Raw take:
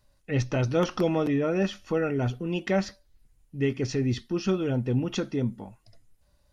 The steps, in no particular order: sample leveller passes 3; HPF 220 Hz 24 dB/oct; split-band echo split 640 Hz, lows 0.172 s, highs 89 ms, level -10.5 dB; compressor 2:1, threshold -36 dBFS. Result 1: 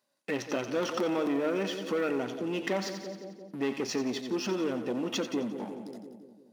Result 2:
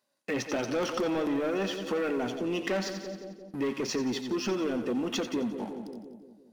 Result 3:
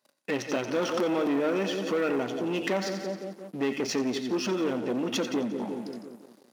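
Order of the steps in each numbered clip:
sample leveller > split-band echo > compressor > HPF; HPF > sample leveller > split-band echo > compressor; split-band echo > compressor > sample leveller > HPF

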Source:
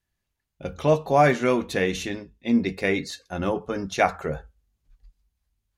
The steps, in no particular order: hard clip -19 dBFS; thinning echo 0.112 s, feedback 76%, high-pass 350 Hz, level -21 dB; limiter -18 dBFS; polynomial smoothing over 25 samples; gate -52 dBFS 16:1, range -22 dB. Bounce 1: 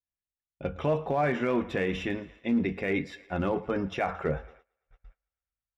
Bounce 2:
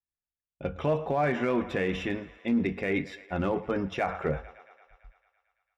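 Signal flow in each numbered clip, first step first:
limiter > thinning echo > gate > polynomial smoothing > hard clip; polynomial smoothing > gate > thinning echo > limiter > hard clip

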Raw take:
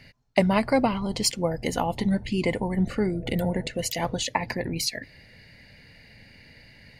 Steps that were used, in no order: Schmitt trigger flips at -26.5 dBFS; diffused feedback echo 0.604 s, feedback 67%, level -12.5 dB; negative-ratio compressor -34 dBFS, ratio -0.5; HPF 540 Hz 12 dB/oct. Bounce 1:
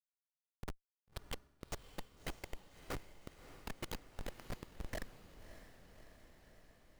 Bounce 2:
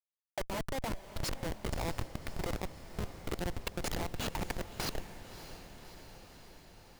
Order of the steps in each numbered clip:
negative-ratio compressor > HPF > Schmitt trigger > diffused feedback echo; HPF > Schmitt trigger > negative-ratio compressor > diffused feedback echo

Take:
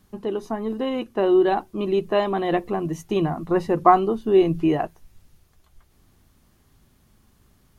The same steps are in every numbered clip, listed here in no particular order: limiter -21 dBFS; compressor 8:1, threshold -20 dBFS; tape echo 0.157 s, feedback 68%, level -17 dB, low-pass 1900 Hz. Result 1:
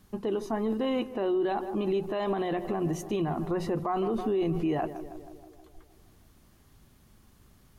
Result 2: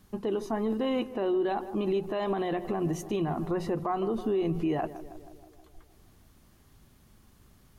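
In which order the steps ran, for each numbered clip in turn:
tape echo > limiter > compressor; compressor > tape echo > limiter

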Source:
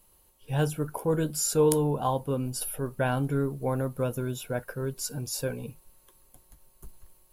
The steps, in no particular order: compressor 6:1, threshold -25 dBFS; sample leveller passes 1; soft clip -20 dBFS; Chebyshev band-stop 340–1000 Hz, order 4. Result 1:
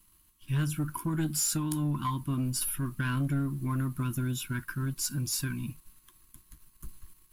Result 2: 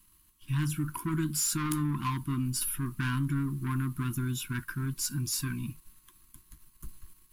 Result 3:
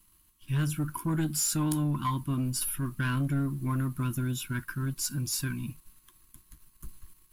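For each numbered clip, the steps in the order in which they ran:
compressor > Chebyshev band-stop > soft clip > sample leveller; soft clip > sample leveller > Chebyshev band-stop > compressor; Chebyshev band-stop > compressor > soft clip > sample leveller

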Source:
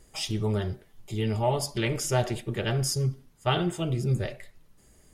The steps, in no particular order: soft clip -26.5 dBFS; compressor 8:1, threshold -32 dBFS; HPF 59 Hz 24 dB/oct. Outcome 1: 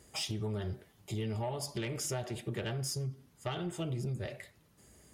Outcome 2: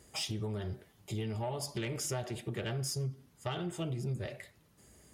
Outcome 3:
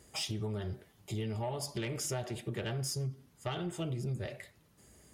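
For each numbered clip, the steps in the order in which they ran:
HPF > compressor > soft clip; compressor > soft clip > HPF; compressor > HPF > soft clip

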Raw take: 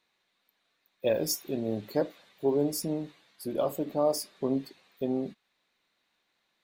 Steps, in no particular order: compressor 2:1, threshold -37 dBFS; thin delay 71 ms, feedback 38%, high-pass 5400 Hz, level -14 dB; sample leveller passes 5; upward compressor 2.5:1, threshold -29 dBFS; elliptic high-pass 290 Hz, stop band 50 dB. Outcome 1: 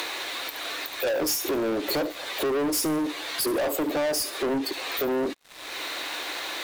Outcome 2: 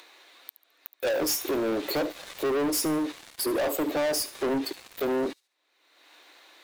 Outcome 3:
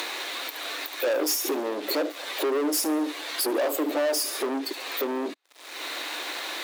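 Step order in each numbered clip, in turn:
compressor > elliptic high-pass > upward compressor > thin delay > sample leveller; elliptic high-pass > compressor > sample leveller > upward compressor > thin delay; thin delay > compressor > upward compressor > sample leveller > elliptic high-pass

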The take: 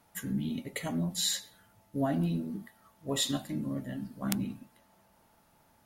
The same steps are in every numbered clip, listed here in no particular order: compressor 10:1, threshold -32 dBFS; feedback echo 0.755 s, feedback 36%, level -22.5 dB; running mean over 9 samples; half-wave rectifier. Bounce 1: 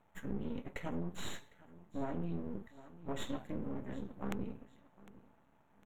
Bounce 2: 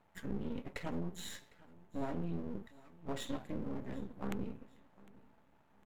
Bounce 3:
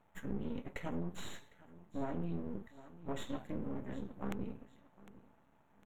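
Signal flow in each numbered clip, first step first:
feedback echo > half-wave rectifier > running mean > compressor; running mean > half-wave rectifier > compressor > feedback echo; feedback echo > half-wave rectifier > compressor > running mean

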